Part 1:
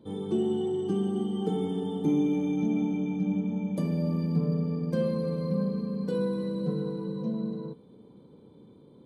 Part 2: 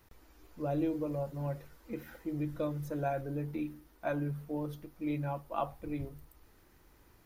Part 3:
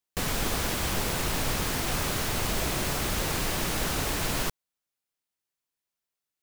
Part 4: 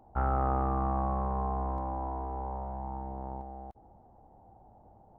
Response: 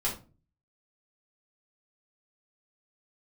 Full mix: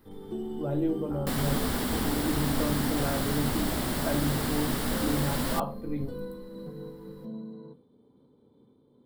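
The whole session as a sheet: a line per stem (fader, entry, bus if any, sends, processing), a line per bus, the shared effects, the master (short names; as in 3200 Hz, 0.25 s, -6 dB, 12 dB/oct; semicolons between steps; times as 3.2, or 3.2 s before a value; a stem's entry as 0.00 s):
-5.5 dB, 0.00 s, send -17 dB, bell 220 Hz -8.5 dB 1.1 oct; noise-modulated level, depth 60%
-1.0 dB, 0.00 s, send -9 dB, dry
-2.0 dB, 1.10 s, no send, dry
-9.5 dB, 0.95 s, no send, compressor, threshold -30 dBFS, peak gain reduction 6.5 dB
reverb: on, RT60 0.35 s, pre-delay 5 ms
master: thirty-one-band EQ 250 Hz +12 dB, 2500 Hz -8 dB, 6300 Hz -10 dB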